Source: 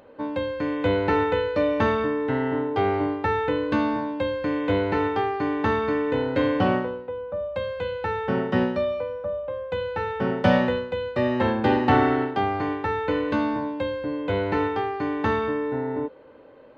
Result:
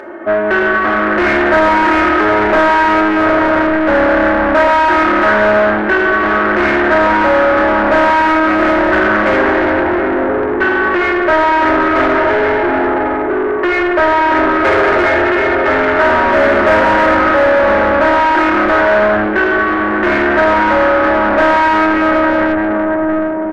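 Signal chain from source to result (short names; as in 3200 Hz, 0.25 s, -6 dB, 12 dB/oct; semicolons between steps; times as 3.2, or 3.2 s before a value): shoebox room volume 160 m³, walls hard, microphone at 0.46 m; wide varispeed 0.713×; comb 3.3 ms, depth 96%; de-hum 51.7 Hz, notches 4; overdrive pedal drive 31 dB, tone 1400 Hz, clips at -3 dBFS; in parallel at -11.5 dB: soft clip -14.5 dBFS, distortion -13 dB; on the sum: fifteen-band EQ 160 Hz -11 dB, 630 Hz +4 dB, 1600 Hz +12 dB; Doppler distortion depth 0.21 ms; gain -4.5 dB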